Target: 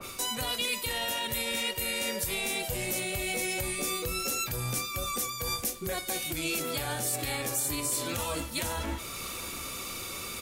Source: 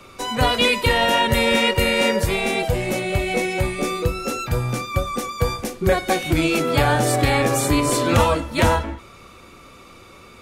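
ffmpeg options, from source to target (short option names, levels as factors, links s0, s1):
-af "aemphasis=mode=production:type=50fm,areverse,acompressor=threshold=0.0355:ratio=4,areverse,alimiter=level_in=1.33:limit=0.0631:level=0:latency=1:release=262,volume=0.75,aecho=1:1:693:0.133,adynamicequalizer=threshold=0.00251:dfrequency=2300:dqfactor=0.7:tfrequency=2300:tqfactor=0.7:attack=5:release=100:ratio=0.375:range=3:mode=boostabove:tftype=highshelf,volume=1.26"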